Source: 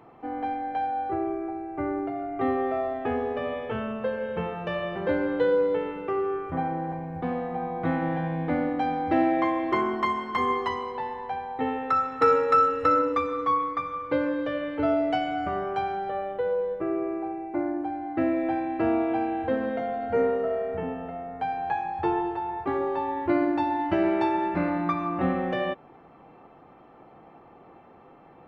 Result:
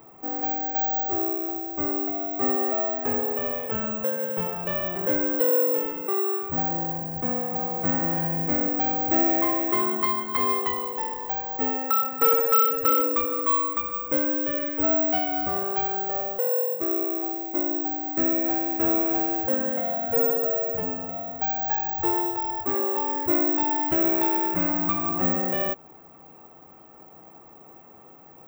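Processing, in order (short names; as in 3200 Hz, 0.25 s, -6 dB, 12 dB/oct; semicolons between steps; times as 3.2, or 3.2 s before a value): in parallel at -4 dB: hard clip -25 dBFS, distortion -9 dB; on the sum: careless resampling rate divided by 2×, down none, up zero stuff; gain -4.5 dB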